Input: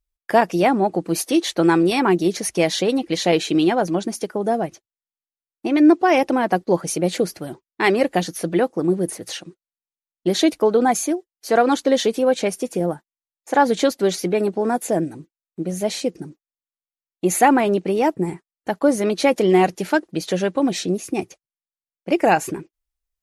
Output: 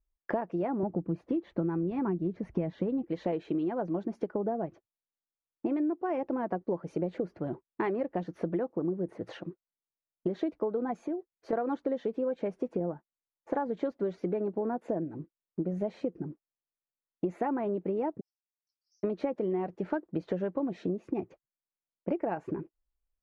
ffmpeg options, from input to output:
-filter_complex "[0:a]asettb=1/sr,asplit=3[a][b][c];[a]atrim=end=0.834[d];[b]atrim=start=0.83:end=3.04,asetpts=PTS-STARTPTS,afade=t=in:d=0.004:c=qsin,afade=t=out:st=2.206:d=0.004:c=qsin,bass=f=250:g=13,treble=f=4k:g=-8[e];[c]atrim=start=3.036[f];[d][e]acrossfade=d=0.004:c1=hsin:c2=qsin[g];[g][f]acrossfade=d=0.004:c1=qsin:c2=hsin,asettb=1/sr,asplit=3[h][i][j];[h]atrim=end=11.074[k];[i]atrim=start=11.07:end=11.53,asetpts=PTS-STARTPTS,afade=t=in:d=0.004:c=qsin,afade=t=out:st=0.456:d=0.004:c=qsin,acompressor=threshold=-26dB:ratio=6:attack=3.2:release=140:knee=1:detection=peak[l];[j]atrim=start=11.526[m];[k][l]acrossfade=d=0.004:c1=hsin:c2=qsin[n];[n][m]acrossfade=d=0.004:c1=qsin:c2=hsin,asplit=3[o][p][q];[o]afade=t=out:st=18.19:d=0.02[r];[p]asuperpass=centerf=5400:order=8:qfactor=4.3,afade=t=in:st=18.19:d=0.02,afade=t=out:st=19.03:d=0.02[s];[q]afade=t=in:st=19.03:d=0.02[t];[r][s][t]amix=inputs=3:normalize=0,lowpass=1.1k,bandreject=f=770:w=12,acompressor=threshold=-28dB:ratio=10"

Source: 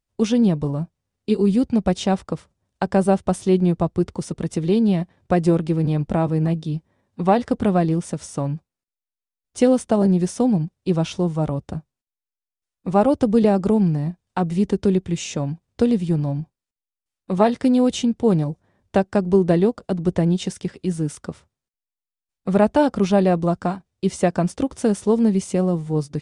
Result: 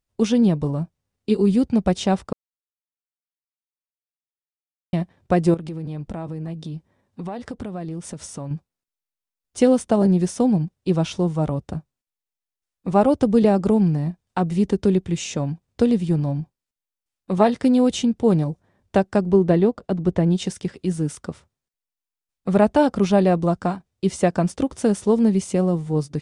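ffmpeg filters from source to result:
-filter_complex "[0:a]asettb=1/sr,asplit=3[a][b][c];[a]atrim=end=5.544[d];[b]atrim=start=5.54:end=8.51,asetpts=PTS-STARTPTS,afade=t=in:d=0.004:c=qsin,afade=t=out:st=2.966:d=0.004:c=qsin,acompressor=threshold=-28dB:ratio=6:attack=3.2:release=140:knee=1:detection=peak[e];[c]atrim=start=8.506[f];[d][e]acrossfade=d=0.004:c1=hsin:c2=qsin[g];[g][f]acrossfade=d=0.004:c1=qsin:c2=hsin,asettb=1/sr,asplit=3[h][i][j];[h]atrim=end=19.314[k];[i]atrim=start=19.31:end=20.31,asetpts=PTS-STARTPTS,afade=t=in:d=0.004:c=qsin,afade=t=out:st=0.996:d=0.004:c=qsin,highshelf=f=5.2k:g=-10[l];[j]atrim=start=20.306[m];[k][l]acrossfade=d=0.004:c1=hsin:c2=qsin[n];[n][m]acrossfade=d=0.004:c1=qsin:c2=hsin,asplit=3[o][p][q];[o]atrim=end=2.33,asetpts=PTS-STARTPTS,afade=t=out:st=2.326:d=0.004:c=hsin[r];[p]atrim=start=2.33:end=4.93,asetpts=PTS-STARTPTS,volume=0[s];[q]atrim=start=4.93,asetpts=PTS-STARTPTS,afade=t=in:d=0.004:c=hsin[t];[r][s][t]concat=n=3:v=0:a=1"

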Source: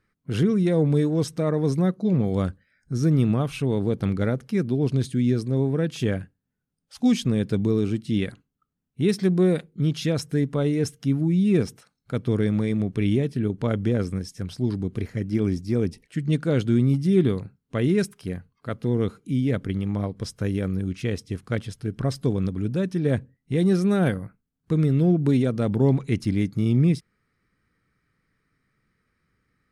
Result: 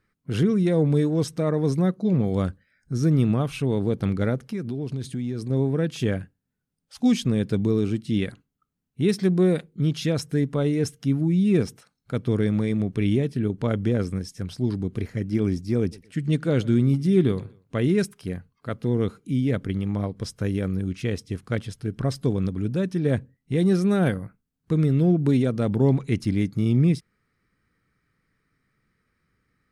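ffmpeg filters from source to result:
-filter_complex "[0:a]asettb=1/sr,asplit=3[a][b][c];[a]atrim=end=4.504[d];[b]atrim=start=4.5:end=5.5,asetpts=PTS-STARTPTS,afade=t=in:d=0.004:c=qsin,afade=t=out:st=0.996:d=0.004:c=qsin,acompressor=threshold=-26dB:ratio=4:attack=3.2:release=140:knee=1:detection=peak[e];[c]atrim=start=5.496[f];[d][e]acrossfade=d=0.004:c1=hsin:c2=qsin[g];[g][f]acrossfade=d=0.004:c1=qsin:c2=hsin,asettb=1/sr,asplit=3[h][i][j];[h]atrim=end=15.804[k];[i]atrim=start=15.8:end=17.87,asetpts=PTS-STARTPTS,afade=t=in:d=0.004:c=qsin,afade=t=out:st=2.066:d=0.004:c=qsin,aecho=1:1:120|240:0.075|0.0232,atrim=end_sample=91287[l];[j]atrim=start=17.866[m];[k][l]acrossfade=d=0.004:c1=hsin:c2=qsin[n];[n][m]acrossfade=d=0.004:c1=qsin:c2=hsin"

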